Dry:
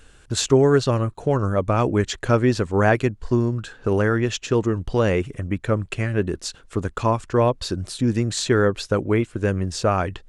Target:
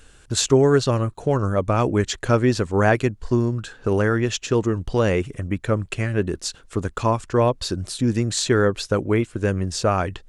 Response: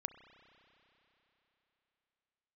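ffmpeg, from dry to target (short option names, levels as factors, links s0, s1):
-af "bass=f=250:g=0,treble=f=4000:g=3"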